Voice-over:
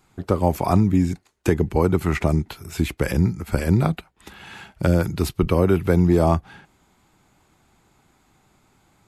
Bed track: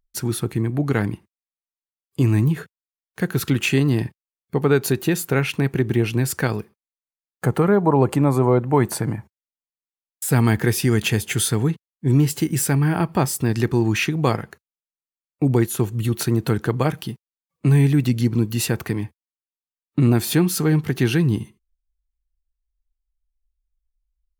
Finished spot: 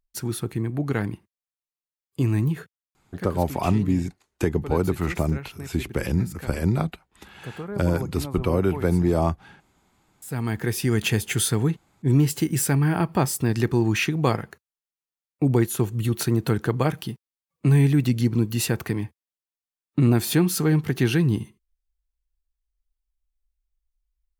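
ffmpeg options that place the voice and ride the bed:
-filter_complex "[0:a]adelay=2950,volume=-4dB[a];[1:a]volume=10.5dB,afade=t=out:st=2.49:d=0.98:silence=0.237137,afade=t=in:st=10.19:d=0.92:silence=0.177828[b];[a][b]amix=inputs=2:normalize=0"

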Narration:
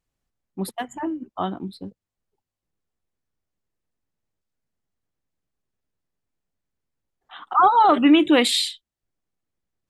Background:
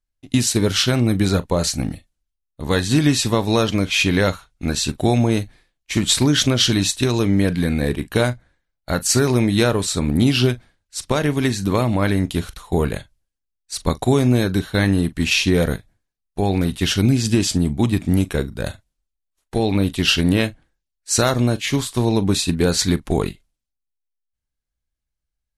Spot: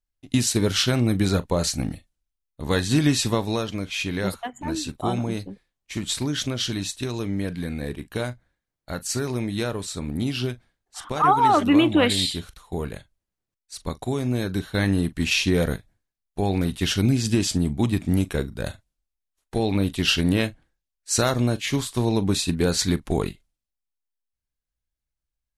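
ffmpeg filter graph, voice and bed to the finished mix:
-filter_complex "[0:a]adelay=3650,volume=-2.5dB[a];[1:a]volume=2.5dB,afade=t=out:st=3.28:d=0.36:silence=0.473151,afade=t=in:st=14.18:d=0.76:silence=0.501187[b];[a][b]amix=inputs=2:normalize=0"

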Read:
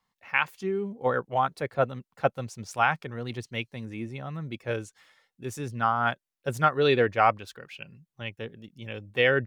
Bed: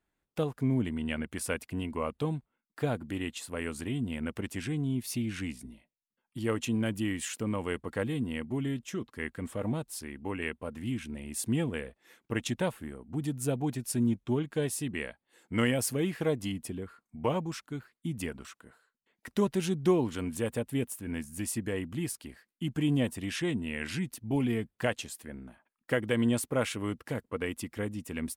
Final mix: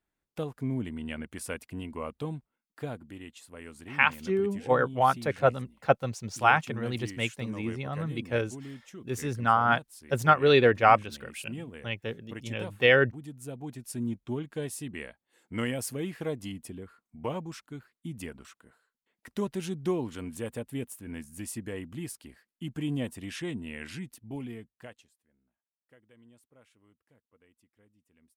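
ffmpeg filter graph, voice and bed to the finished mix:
-filter_complex "[0:a]adelay=3650,volume=2dB[a];[1:a]volume=2.5dB,afade=t=out:st=2.58:d=0.6:silence=0.473151,afade=t=in:st=13.49:d=0.71:silence=0.501187,afade=t=out:st=23.69:d=1.46:silence=0.0421697[b];[a][b]amix=inputs=2:normalize=0"

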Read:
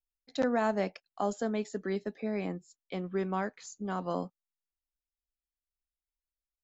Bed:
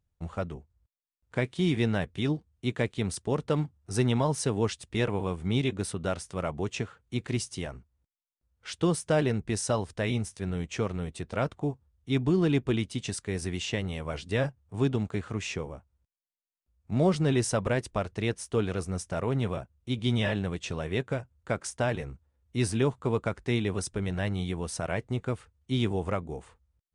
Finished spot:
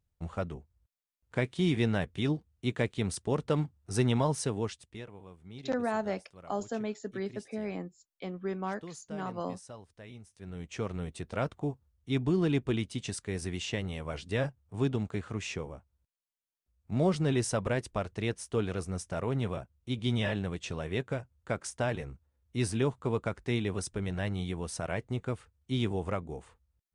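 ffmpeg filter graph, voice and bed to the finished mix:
-filter_complex "[0:a]adelay=5300,volume=-2.5dB[a];[1:a]volume=15dB,afade=t=out:st=4.27:d=0.79:silence=0.125893,afade=t=in:st=10.28:d=0.72:silence=0.149624[b];[a][b]amix=inputs=2:normalize=0"

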